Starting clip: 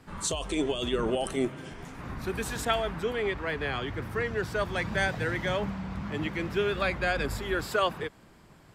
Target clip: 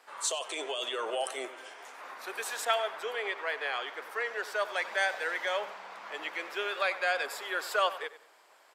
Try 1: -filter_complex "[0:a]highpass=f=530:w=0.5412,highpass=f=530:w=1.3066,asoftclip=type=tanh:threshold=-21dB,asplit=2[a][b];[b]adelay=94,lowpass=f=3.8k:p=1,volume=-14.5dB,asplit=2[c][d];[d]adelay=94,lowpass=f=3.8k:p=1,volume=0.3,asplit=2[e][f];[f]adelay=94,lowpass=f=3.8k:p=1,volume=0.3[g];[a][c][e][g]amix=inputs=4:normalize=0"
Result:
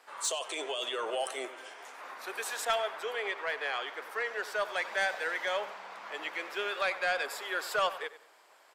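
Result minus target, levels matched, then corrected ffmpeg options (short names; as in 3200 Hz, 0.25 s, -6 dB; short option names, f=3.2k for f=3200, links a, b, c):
soft clip: distortion +14 dB
-filter_complex "[0:a]highpass=f=530:w=0.5412,highpass=f=530:w=1.3066,asoftclip=type=tanh:threshold=-12.5dB,asplit=2[a][b];[b]adelay=94,lowpass=f=3.8k:p=1,volume=-14.5dB,asplit=2[c][d];[d]adelay=94,lowpass=f=3.8k:p=1,volume=0.3,asplit=2[e][f];[f]adelay=94,lowpass=f=3.8k:p=1,volume=0.3[g];[a][c][e][g]amix=inputs=4:normalize=0"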